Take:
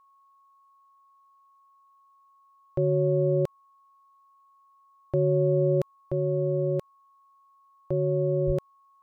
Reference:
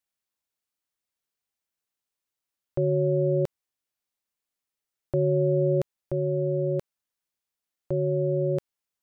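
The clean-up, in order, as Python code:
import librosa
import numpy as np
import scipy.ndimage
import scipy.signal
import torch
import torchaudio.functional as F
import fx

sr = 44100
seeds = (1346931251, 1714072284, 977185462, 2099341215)

y = fx.notch(x, sr, hz=1100.0, q=30.0)
y = fx.highpass(y, sr, hz=140.0, slope=24, at=(8.46, 8.58), fade=0.02)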